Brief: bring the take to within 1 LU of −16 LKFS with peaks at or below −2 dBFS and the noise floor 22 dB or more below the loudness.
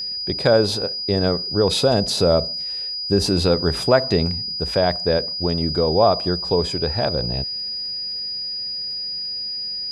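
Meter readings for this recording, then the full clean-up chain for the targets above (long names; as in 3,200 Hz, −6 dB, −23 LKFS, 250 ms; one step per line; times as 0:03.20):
crackle rate 22 per second; interfering tone 4,900 Hz; level of the tone −25 dBFS; integrated loudness −20.5 LKFS; sample peak −3.0 dBFS; target loudness −16.0 LKFS
→ click removal
notch filter 4,900 Hz, Q 30
level +4.5 dB
brickwall limiter −2 dBFS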